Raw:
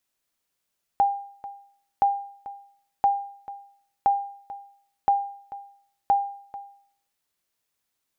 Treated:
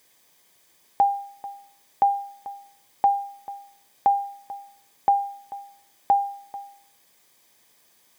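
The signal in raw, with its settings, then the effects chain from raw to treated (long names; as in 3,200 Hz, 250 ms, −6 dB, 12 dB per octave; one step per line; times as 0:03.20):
ping with an echo 801 Hz, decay 0.58 s, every 1.02 s, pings 6, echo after 0.44 s, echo −17 dB −13 dBFS
in parallel at −11.5 dB: bit-depth reduction 8 bits, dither triangular
on the sum: notch comb filter 1,400 Hz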